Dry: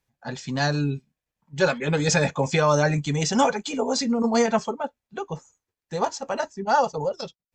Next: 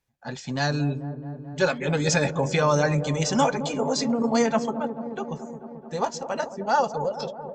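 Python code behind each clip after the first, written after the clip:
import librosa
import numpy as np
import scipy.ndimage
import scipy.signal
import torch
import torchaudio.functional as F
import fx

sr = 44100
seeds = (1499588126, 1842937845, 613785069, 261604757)

y = fx.echo_wet_lowpass(x, sr, ms=218, feedback_pct=75, hz=730.0, wet_db=-9.5)
y = y * 10.0 ** (-1.5 / 20.0)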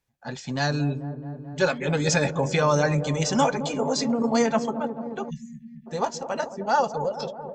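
y = fx.spec_erase(x, sr, start_s=5.3, length_s=0.57, low_hz=240.0, high_hz=1700.0)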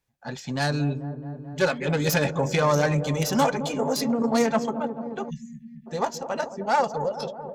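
y = fx.self_delay(x, sr, depth_ms=0.083)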